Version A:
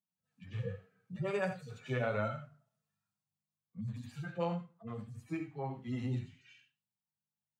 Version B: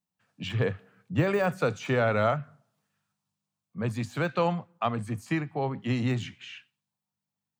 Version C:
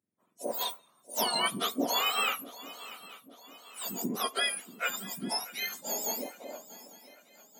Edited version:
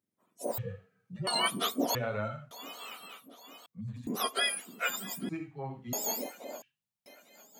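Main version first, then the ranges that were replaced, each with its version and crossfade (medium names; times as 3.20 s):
C
0.58–1.27 s: from A
1.95–2.51 s: from A
3.66–4.07 s: from A
5.29–5.93 s: from A
6.62–7.06 s: from A
not used: B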